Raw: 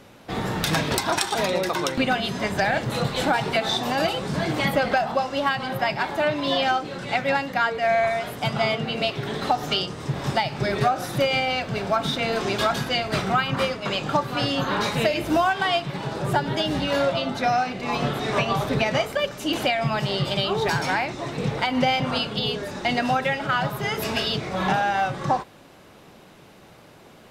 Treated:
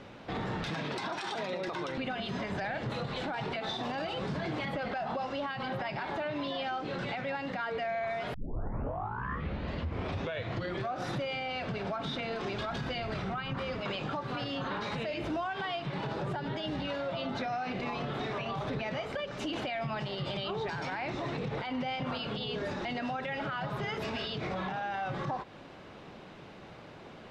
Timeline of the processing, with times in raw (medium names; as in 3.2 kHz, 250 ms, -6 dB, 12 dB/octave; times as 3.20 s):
0.70–1.68 s: high-pass 120 Hz 24 dB/octave
8.34 s: tape start 2.65 s
12.54–13.80 s: bass shelf 97 Hz +11.5 dB
whole clip: low-pass 4 kHz 12 dB/octave; compression, threshold -27 dBFS; peak limiter -27 dBFS